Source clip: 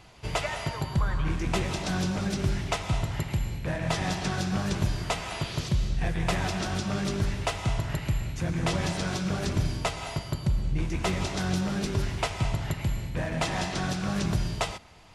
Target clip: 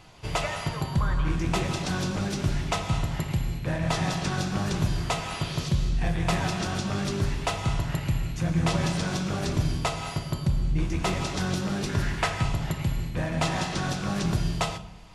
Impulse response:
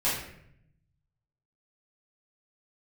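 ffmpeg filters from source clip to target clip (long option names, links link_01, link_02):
-filter_complex "[0:a]asettb=1/sr,asplit=3[link_01][link_02][link_03];[link_01]atrim=end=11.894[link_04];[link_02]atrim=start=11.89:end=12.43,asetpts=PTS-STARTPTS,afade=type=in:duration=0.004:curve=qsin,afade=type=out:start_time=0.536:duration=0.004:curve=qsin,equalizer=frequency=1700:width=2.8:gain=10[link_05];[link_03]atrim=start=12.426[link_06];[link_04][link_05]acrossfade=duration=0.004:curve1=hsin:curve2=qsin[link_07];[link_07][link_06]acrossfade=duration=0.004:curve1=qsin:curve2=hsin,asplit=2[link_08][link_09];[link_09]asuperstop=centerf=2100:order=4:qfactor=2.9[link_10];[1:a]atrim=start_sample=2205,asetrate=57330,aresample=44100[link_11];[link_10][link_11]afir=irnorm=-1:irlink=0,volume=-14.5dB[link_12];[link_08][link_12]amix=inputs=2:normalize=0"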